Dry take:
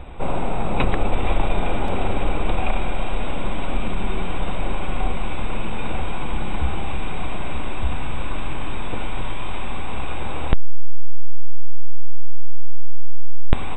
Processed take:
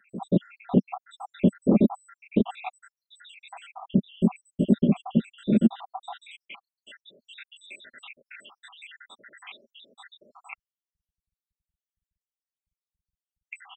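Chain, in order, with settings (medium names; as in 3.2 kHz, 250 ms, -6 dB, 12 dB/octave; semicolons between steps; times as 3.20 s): random holes in the spectrogram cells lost 83%; graphic EQ 125/250/500/1000/2000 Hz +4/+11/+3/-6/-7 dB; high-pass sweep 190 Hz -> 1.9 kHz, 5.63–6.51 s; comb 5.1 ms, depth 33%; transformer saturation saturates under 110 Hz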